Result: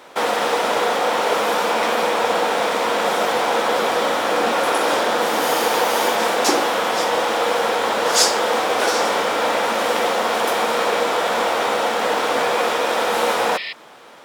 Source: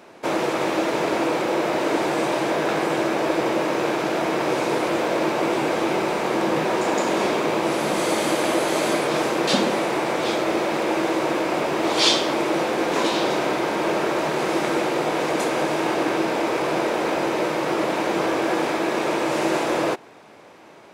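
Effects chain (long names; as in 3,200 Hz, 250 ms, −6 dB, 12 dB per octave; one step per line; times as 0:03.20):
healed spectral selection 0:19.85–0:20.15, 1,200–3,600 Hz before
change of speed 1.47×
level +3 dB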